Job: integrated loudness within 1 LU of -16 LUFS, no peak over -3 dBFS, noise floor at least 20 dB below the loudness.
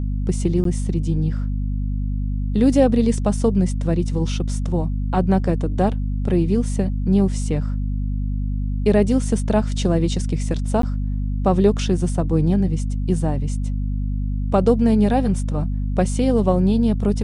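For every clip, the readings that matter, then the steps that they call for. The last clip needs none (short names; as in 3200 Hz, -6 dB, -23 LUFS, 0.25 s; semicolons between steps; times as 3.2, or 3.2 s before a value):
dropouts 2; longest dropout 13 ms; hum 50 Hz; harmonics up to 250 Hz; hum level -20 dBFS; loudness -21.0 LUFS; peak -4.0 dBFS; loudness target -16.0 LUFS
-> interpolate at 0.64/10.82, 13 ms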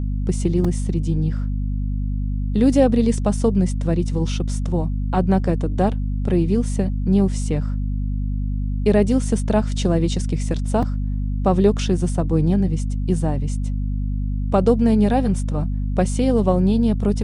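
dropouts 0; hum 50 Hz; harmonics up to 250 Hz; hum level -20 dBFS
-> de-hum 50 Hz, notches 5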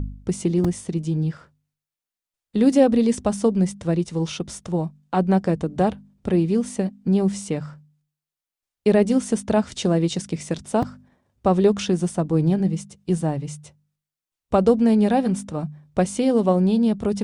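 hum none; loudness -22.0 LUFS; peak -5.0 dBFS; loudness target -16.0 LUFS
-> gain +6 dB; limiter -3 dBFS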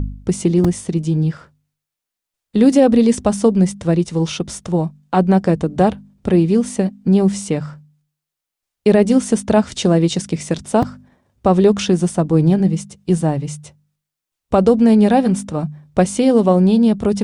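loudness -16.0 LUFS; peak -3.0 dBFS; noise floor -84 dBFS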